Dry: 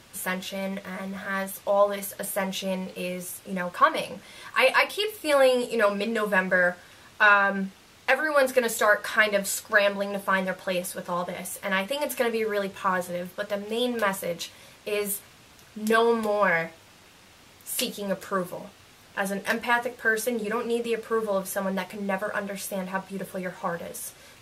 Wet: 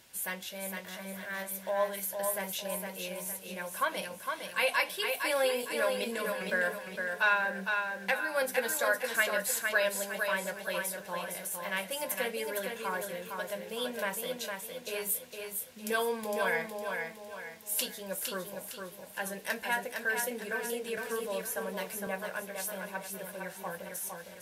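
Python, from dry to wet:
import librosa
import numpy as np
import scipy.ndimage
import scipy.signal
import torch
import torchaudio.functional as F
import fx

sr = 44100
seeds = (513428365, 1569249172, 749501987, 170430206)

y = fx.low_shelf(x, sr, hz=410.0, db=-7.5)
y = fx.over_compress(y, sr, threshold_db=-29.0, ratio=-1.0, at=(5.98, 6.52))
y = fx.high_shelf(y, sr, hz=11000.0, db=11.5)
y = fx.notch(y, sr, hz=1200.0, q=5.8)
y = fx.echo_feedback(y, sr, ms=459, feedback_pct=41, wet_db=-5)
y = fx.band_squash(y, sr, depth_pct=40, at=(20.97, 22.07))
y = F.gain(torch.from_numpy(y), -7.0).numpy()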